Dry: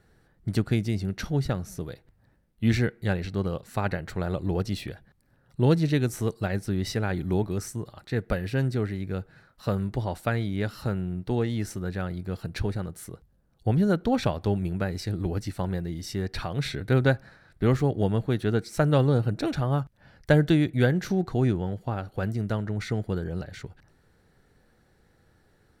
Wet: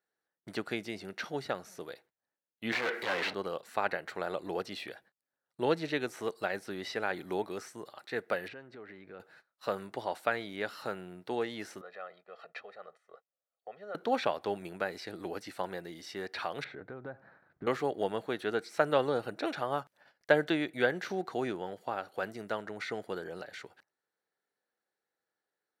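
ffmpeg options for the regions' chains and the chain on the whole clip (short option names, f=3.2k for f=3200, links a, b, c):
-filter_complex "[0:a]asettb=1/sr,asplit=3[a][b][c];[a]atrim=end=2.724[d];[b]atrim=start=2.72:end=3.34,asetpts=PTS-STARTPTS,afade=t=in:d=0.004:c=qsin,afade=t=out:st=0.616:d=0.004:c=qsin,asoftclip=type=hard:threshold=-28.5dB,asplit=2[e][f];[f]highpass=f=720:p=1,volume=34dB,asoftclip=type=tanh:threshold=-22dB[g];[e][g]amix=inputs=2:normalize=0,lowpass=f=6.1k:p=1,volume=-6dB[h];[c]atrim=start=3.336[i];[d][h]acrossfade=d=0.004:c1=hsin:c2=qsin[j];[j][i]acrossfade=d=0.004:c1=qsin:c2=hsin,asettb=1/sr,asplit=3[k][l][m];[k]atrim=end=8.484[n];[l]atrim=start=8.48:end=9.2,asetpts=PTS-STARTPTS,afade=t=in:d=0.004:c=qsin,afade=t=out:st=0.716:d=0.004:c=qsin,lowpass=2.4k,acompressor=threshold=-33dB:ratio=12:attack=3.2:release=140:knee=1:detection=peak[o];[m]atrim=start=9.196[p];[n][o]acrossfade=d=0.004:c1=hsin:c2=qsin[q];[q][p]acrossfade=d=0.004:c1=qsin:c2=hsin,asettb=1/sr,asplit=3[r][s][t];[r]atrim=end=11.814[u];[s]atrim=start=11.81:end=13.95,asetpts=PTS-STARTPTS,afade=t=in:d=0.004:c=qsin,afade=t=out:st=2.136:d=0.004:c=qsin,aecho=1:1:1.6:0.92,atrim=end_sample=94374,acompressor=threshold=-35dB:ratio=3:attack=3.2:release=140:knee=1:detection=peak,highpass=370,lowpass=2.4k[v];[t]atrim=start=13.946[w];[u][v]acrossfade=d=0.004:c1=hsin:c2=qsin[x];[x][w]acrossfade=d=0.004:c1=qsin:c2=hsin,asettb=1/sr,asplit=3[y][z][aa];[y]atrim=end=16.644[ab];[z]atrim=start=16.64:end=17.67,asetpts=PTS-STARTPTS,afade=t=in:d=0.004:c=qsin,afade=t=out:st=1.026:d=0.004:c=qsin,lowpass=1.2k,acompressor=threshold=-28dB:ratio=20:attack=3.2:release=140:knee=1:detection=peak,asubboost=boost=11.5:cutoff=230[ac];[aa]atrim=start=17.666[ad];[ab][ac]acrossfade=d=0.004:c1=hsin:c2=qsin[ae];[ae][ad]acrossfade=d=0.004:c1=qsin:c2=hsin,acrossover=split=4000[af][ag];[ag]acompressor=threshold=-54dB:ratio=4:attack=1:release=60[ah];[af][ah]amix=inputs=2:normalize=0,agate=range=-21dB:threshold=-51dB:ratio=16:detection=peak,highpass=500"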